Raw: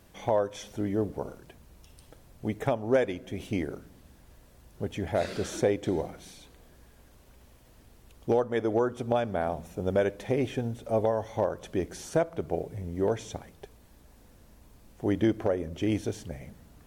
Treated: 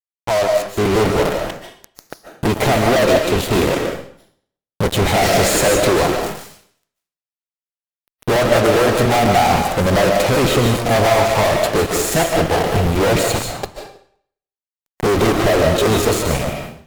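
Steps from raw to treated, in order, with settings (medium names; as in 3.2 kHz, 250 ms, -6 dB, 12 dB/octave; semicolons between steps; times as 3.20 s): fade-in on the opening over 1.17 s; formant shift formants +3 st; fuzz box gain 44 dB, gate -43 dBFS; on a send at -3 dB: reverberation RT60 0.55 s, pre-delay 105 ms; on the sum: crackling interface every 0.10 s, samples 256, repeat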